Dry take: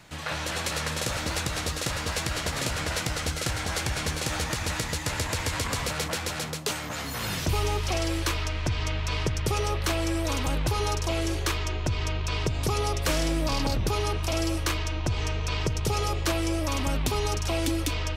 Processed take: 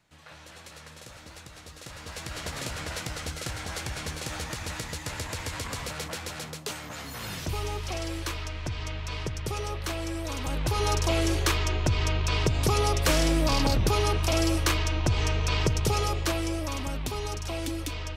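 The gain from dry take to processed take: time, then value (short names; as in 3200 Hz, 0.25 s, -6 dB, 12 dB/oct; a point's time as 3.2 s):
1.64 s -17 dB
2.45 s -5.5 dB
10.35 s -5.5 dB
10.96 s +2.5 dB
15.7 s +2.5 dB
16.92 s -5.5 dB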